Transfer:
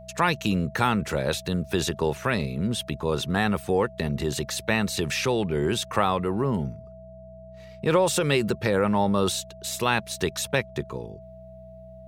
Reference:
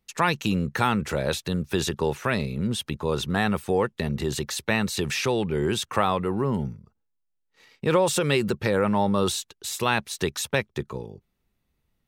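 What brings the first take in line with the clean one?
de-hum 62.3 Hz, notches 3; notch 650 Hz, Q 30

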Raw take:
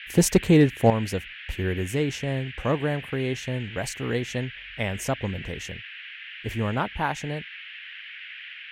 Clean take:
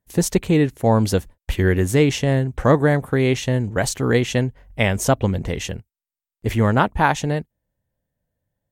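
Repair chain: clip repair -8.5 dBFS; noise print and reduce 30 dB; gain correction +9.5 dB, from 0.9

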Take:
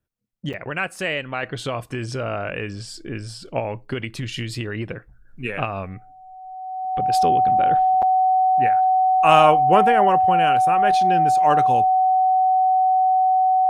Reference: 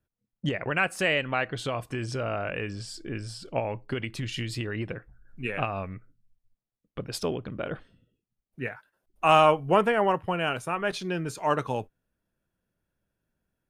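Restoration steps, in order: notch 750 Hz, Q 30; interpolate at 0.53/8.02, 6.7 ms; gain 0 dB, from 1.43 s -4 dB

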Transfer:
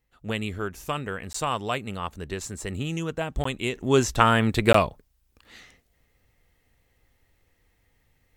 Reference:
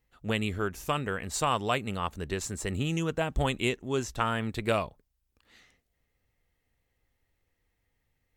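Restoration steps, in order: interpolate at 1.33/3.44/4.73, 14 ms; gain 0 dB, from 3.75 s -10 dB

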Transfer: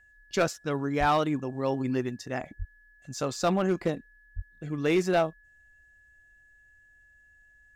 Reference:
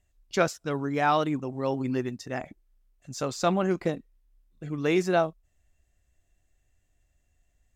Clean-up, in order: clip repair -17.5 dBFS; notch 1700 Hz, Q 30; de-plosive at 0.99/2.58/4.35

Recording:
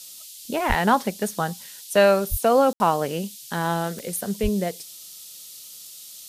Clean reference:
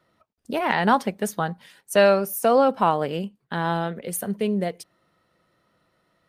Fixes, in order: de-click; de-plosive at 0.68/2.3/4.42; room tone fill 2.73–2.8; noise print and reduce 26 dB

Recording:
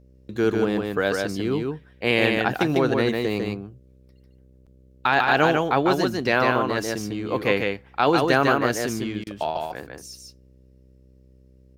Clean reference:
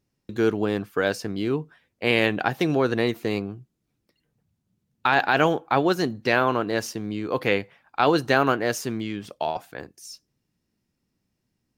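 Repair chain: de-hum 64.3 Hz, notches 9; interpolate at 4.66, 6.3 ms; interpolate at 9.24, 26 ms; inverse comb 0.149 s -3.5 dB

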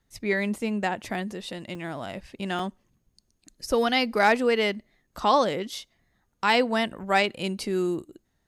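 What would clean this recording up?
clip repair -10 dBFS; interpolate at 1.75/2.59/5.07/6.32, 3.5 ms

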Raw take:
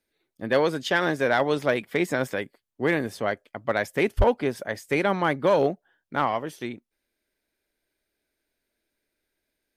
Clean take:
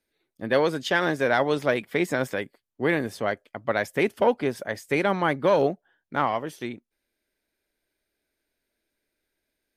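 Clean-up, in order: clip repair -12 dBFS; de-plosive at 4.17

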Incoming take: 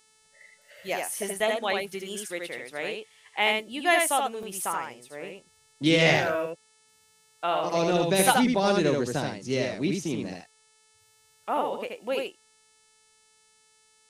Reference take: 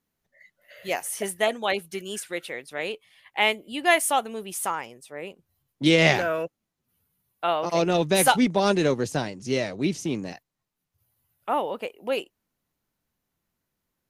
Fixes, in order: de-hum 436.8 Hz, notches 23; interpolate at 1.4/4.43, 1.3 ms; inverse comb 78 ms -3.5 dB; gain 0 dB, from 0.62 s +3 dB

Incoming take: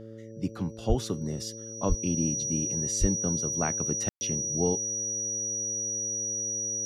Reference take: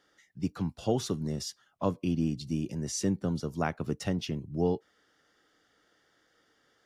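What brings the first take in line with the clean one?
de-hum 111.5 Hz, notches 5; notch 5800 Hz, Q 30; 0.88–1 HPF 140 Hz 24 dB/oct; 1.88–2 HPF 140 Hz 24 dB/oct; 3–3.12 HPF 140 Hz 24 dB/oct; room tone fill 4.09–4.21

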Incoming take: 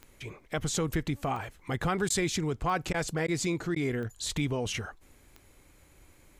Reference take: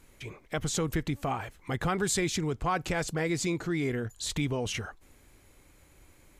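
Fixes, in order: de-click; interpolate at 2.09/2.93/3.27/3.75, 10 ms

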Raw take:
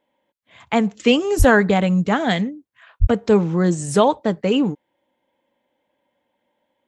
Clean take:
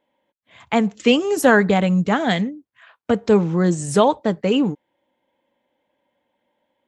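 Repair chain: 1.38–1.5 HPF 140 Hz 24 dB/oct; 3–3.12 HPF 140 Hz 24 dB/oct

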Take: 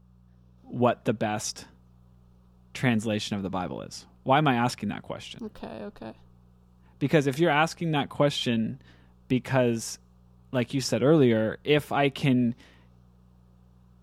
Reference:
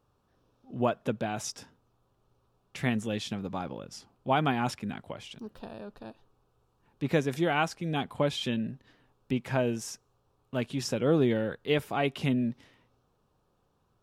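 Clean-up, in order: de-hum 60.6 Hz, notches 3; gain 0 dB, from 0.58 s -4.5 dB

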